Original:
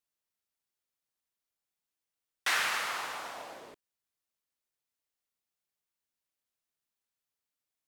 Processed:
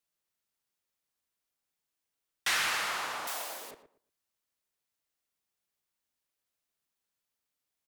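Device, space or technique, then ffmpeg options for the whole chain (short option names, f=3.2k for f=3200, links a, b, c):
one-band saturation: -filter_complex "[0:a]acrossover=split=220|2700[a][b][c];[b]asoftclip=type=tanh:threshold=-31.5dB[d];[a][d][c]amix=inputs=3:normalize=0,asettb=1/sr,asplit=3[e][f][g];[e]atrim=end=3.274[h];[f]atrim=start=3.27:end=3.71,asetpts=PTS-STARTPTS,afade=t=in:d=0.004:c=qsin,afade=t=out:st=0.436:d=0.004:c=qsin,aemphasis=mode=production:type=riaa[i];[g]atrim=start=3.706[j];[h][i]acrossfade=d=0.004:c1=hsin:c2=qsin[k];[k][j]acrossfade=d=0.004:c1=qsin:c2=hsin,asplit=2[l][m];[m]adelay=117,lowpass=f=1.6k:p=1,volume=-10dB,asplit=2[n][o];[o]adelay=117,lowpass=f=1.6k:p=1,volume=0.23,asplit=2[p][q];[q]adelay=117,lowpass=f=1.6k:p=1,volume=0.23[r];[l][n][p][r]amix=inputs=4:normalize=0,volume=2.5dB"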